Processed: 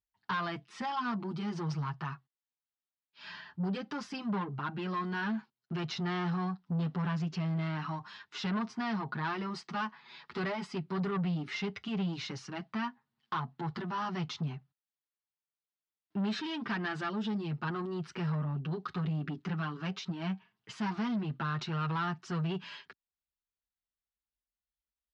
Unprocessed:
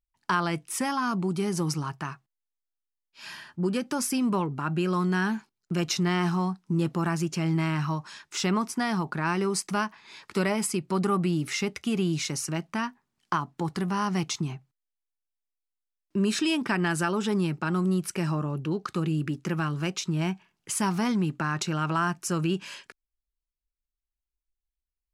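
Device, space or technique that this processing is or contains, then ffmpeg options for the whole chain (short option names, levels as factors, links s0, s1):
barber-pole flanger into a guitar amplifier: -filter_complex "[0:a]asettb=1/sr,asplit=3[s0][s1][s2];[s0]atrim=end=17.094[s3];[s1]atrim=start=17.09:end=17.51,asetpts=PTS-STARTPTS,afade=t=in:d=0.004:c=qsin,afade=t=out:st=0.416:d=0.004:c=qsin,equalizer=f=1200:w=0.74:g=-8.5[s4];[s2]atrim=start=17.506[s5];[s3][s4]acrossfade=d=0.004:c1=hsin:c2=qsin[s6];[s6][s5]acrossfade=d=0.004:c1=qsin:c2=hsin,asplit=2[s7][s8];[s8]adelay=7.2,afreqshift=0.25[s9];[s7][s9]amix=inputs=2:normalize=1,asoftclip=type=tanh:threshold=0.0376,highpass=77,equalizer=f=320:t=q:w=4:g=-8,equalizer=f=540:t=q:w=4:g=-7,equalizer=f=2400:t=q:w=4:g=-5,lowpass=f=4200:w=0.5412,lowpass=f=4200:w=1.3066,volume=1.12"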